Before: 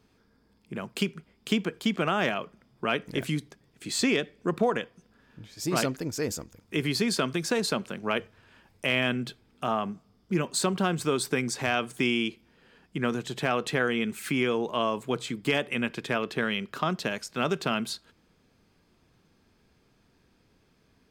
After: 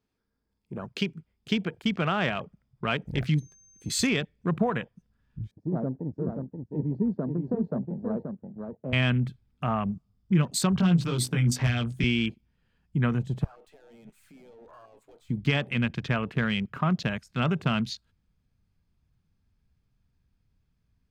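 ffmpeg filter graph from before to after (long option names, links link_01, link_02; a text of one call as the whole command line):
ffmpeg -i in.wav -filter_complex "[0:a]asettb=1/sr,asplit=3[link_01][link_02][link_03];[link_01]atrim=end=3.384[link_04];[link_02]atrim=start=3.38:end=4.07,asetpts=PTS-STARTPTS,afade=type=in:duration=0.004:curve=qsin,afade=type=out:start_time=0.686:duration=0.004:curve=qsin,highshelf=frequency=8600:gain=3.5,aeval=exprs='val(0)+0.0112*sin(2*PI*6300*n/s)':channel_layout=same[link_05];[link_03]atrim=start=4.066[link_06];[link_04][link_05]acrossfade=duration=0.004:curve1=hsin:curve2=qsin[link_07];[link_07][link_06]acrossfade=duration=0.004:curve1=qsin:curve2=hsin,asettb=1/sr,asplit=3[link_08][link_09][link_10];[link_08]atrim=end=5.514[link_11];[link_09]atrim=start=5.51:end=8.93,asetpts=PTS-STARTPTS,afade=type=in:duration=0.004:curve=qsin,afade=type=out:start_time=3.416:duration=0.004:curve=qsin,asuperpass=centerf=340:order=4:qfactor=0.74,aecho=1:1:530:0.531,atrim=end_sample=150822[link_12];[link_10]atrim=start=8.926[link_13];[link_11][link_12]acrossfade=duration=0.004:curve1=hsin:curve2=qsin[link_14];[link_14][link_13]acrossfade=duration=0.004:curve1=qsin:curve2=hsin,asettb=1/sr,asplit=3[link_15][link_16][link_17];[link_15]atrim=end=10.764[link_18];[link_16]atrim=start=10.76:end=12.04,asetpts=PTS-STARTPTS,afade=type=in:duration=0.004:curve=qsin,afade=type=out:start_time=1.276:duration=0.004:curve=qsin,bandreject=frequency=50:width_type=h:width=6,bandreject=frequency=100:width_type=h:width=6,bandreject=frequency=150:width_type=h:width=6,bandreject=frequency=200:width_type=h:width=6,bandreject=frequency=250:width_type=h:width=6,bandreject=frequency=300:width_type=h:width=6,acrossover=split=280|3000[link_19][link_20][link_21];[link_20]acompressor=threshold=-32dB:ratio=3:attack=3.2:release=140:knee=2.83:detection=peak[link_22];[link_19][link_22][link_21]amix=inputs=3:normalize=0,asplit=2[link_23][link_24];[link_24]adelay=17,volume=-2.5dB[link_25];[link_23][link_25]amix=inputs=2:normalize=0,atrim=end_sample=56448[link_26];[link_17]atrim=start=12.036[link_27];[link_18][link_26]acrossfade=duration=0.004:curve1=hsin:curve2=qsin[link_28];[link_28][link_27]acrossfade=duration=0.004:curve1=qsin:curve2=hsin,asettb=1/sr,asplit=3[link_29][link_30][link_31];[link_29]atrim=end=13.444[link_32];[link_30]atrim=start=13.44:end=15.3,asetpts=PTS-STARTPTS,afade=type=in:duration=0.004:curve=qsin,afade=type=out:start_time=1.856:duration=0.004:curve=qsin,highpass=490,acompressor=threshold=-35dB:ratio=5:attack=3.2:release=140:knee=1:detection=peak,aeval=exprs='(tanh(158*val(0)+0.1)-tanh(0.1))/158':channel_layout=same[link_33];[link_31]atrim=start=15.296[link_34];[link_32][link_33]acrossfade=duration=0.004:curve1=hsin:curve2=qsin[link_35];[link_35][link_34]acrossfade=duration=0.004:curve1=qsin:curve2=hsin,afwtdn=0.01,asubboost=boost=9:cutoff=120" out.wav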